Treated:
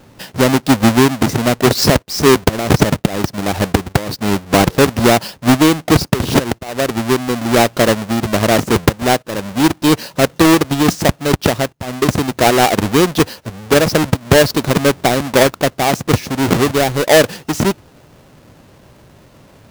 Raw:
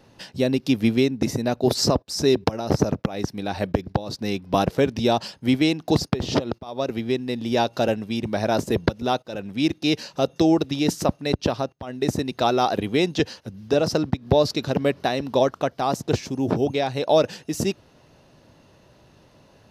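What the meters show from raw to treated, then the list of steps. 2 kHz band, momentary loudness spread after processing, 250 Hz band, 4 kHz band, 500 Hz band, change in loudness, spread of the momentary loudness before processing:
+14.0 dB, 7 LU, +8.5 dB, +9.5 dB, +8.0 dB, +9.0 dB, 7 LU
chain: half-waves squared off; gain +4.5 dB

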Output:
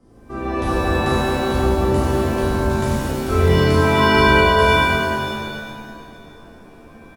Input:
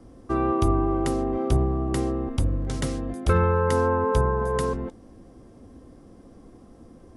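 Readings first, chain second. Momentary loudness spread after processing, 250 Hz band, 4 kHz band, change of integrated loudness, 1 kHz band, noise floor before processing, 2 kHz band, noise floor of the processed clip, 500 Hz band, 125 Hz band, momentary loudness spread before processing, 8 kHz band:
16 LU, +6.0 dB, +18.5 dB, +7.5 dB, +9.0 dB, -50 dBFS, +17.5 dB, -44 dBFS, +7.0 dB, +5.5 dB, 7 LU, +6.0 dB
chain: loudspeakers at several distances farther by 12 m -9 dB, 75 m -10 dB; shimmer reverb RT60 1.9 s, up +7 st, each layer -2 dB, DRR -8.5 dB; gain -7.5 dB

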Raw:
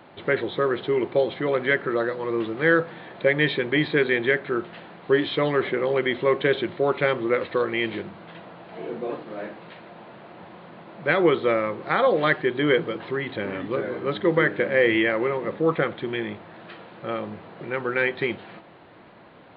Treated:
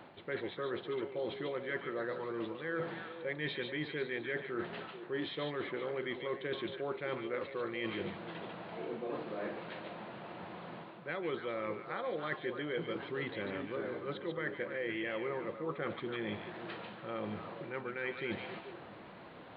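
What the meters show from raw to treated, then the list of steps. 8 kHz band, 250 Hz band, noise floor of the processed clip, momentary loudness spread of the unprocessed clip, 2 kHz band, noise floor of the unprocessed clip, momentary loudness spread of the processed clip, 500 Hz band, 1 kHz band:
n/a, -14.0 dB, -51 dBFS, 17 LU, -15.5 dB, -49 dBFS, 7 LU, -15.0 dB, -14.0 dB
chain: reverse; compressor 6:1, threshold -33 dBFS, peak gain reduction 17.5 dB; reverse; delay with a stepping band-pass 0.144 s, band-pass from 3100 Hz, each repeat -1.4 oct, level -3 dB; gain -3 dB

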